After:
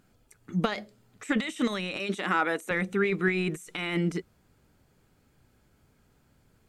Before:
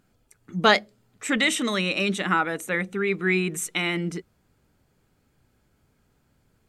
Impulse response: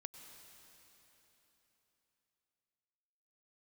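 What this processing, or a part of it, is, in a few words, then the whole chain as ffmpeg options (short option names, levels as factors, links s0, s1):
de-esser from a sidechain: -filter_complex "[0:a]asplit=2[s0][s1];[s1]highpass=5700,apad=whole_len=294729[s2];[s0][s2]sidechaincompress=threshold=0.00447:ratio=16:attack=2.5:release=20,asettb=1/sr,asplit=3[s3][s4][s5];[s3]atrim=end=1.994[s6];[s4]atrim=start=1.99:end=2.71,asetpts=PTS-STARTPTS,afade=t=in:d=0.004:c=qsin,afade=t=out:st=0.716:d=0.004:c=qsin,highpass=260[s7];[s5]atrim=start=2.706[s8];[s6][s7]acrossfade=d=0.004:c1=hsin:c2=qsin[s9];[s9][s8]acrossfade=d=0.004:c1=qsin:c2=hsin,volume=1.19"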